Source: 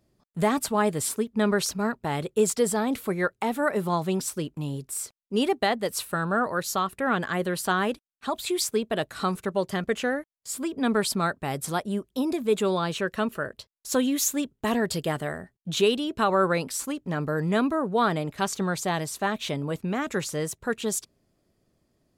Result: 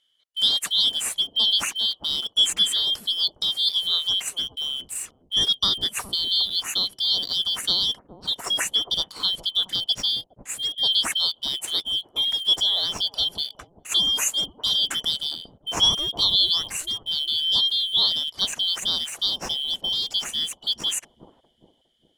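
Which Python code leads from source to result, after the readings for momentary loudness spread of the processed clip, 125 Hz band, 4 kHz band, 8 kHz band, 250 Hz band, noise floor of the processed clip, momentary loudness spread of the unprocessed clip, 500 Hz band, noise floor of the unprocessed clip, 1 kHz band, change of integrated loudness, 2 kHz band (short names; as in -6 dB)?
8 LU, -13.5 dB, +18.5 dB, +2.0 dB, -18.0 dB, -64 dBFS, 8 LU, -18.5 dB, -74 dBFS, -11.5 dB, +5.5 dB, -6.5 dB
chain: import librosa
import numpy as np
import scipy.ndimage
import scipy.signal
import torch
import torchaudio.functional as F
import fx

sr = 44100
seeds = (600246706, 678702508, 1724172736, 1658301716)

p1 = fx.band_shuffle(x, sr, order='3412')
p2 = scipy.signal.sosfilt(scipy.signal.cheby1(10, 1.0, 12000.0, 'lowpass', fs=sr, output='sos'), p1)
p3 = np.where(np.abs(p2) >= 10.0 ** (-32.5 / 20.0), p2, 0.0)
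p4 = p2 + F.gain(torch.from_numpy(p3), -9.5).numpy()
y = fx.echo_bbd(p4, sr, ms=410, stages=2048, feedback_pct=40, wet_db=-5.5)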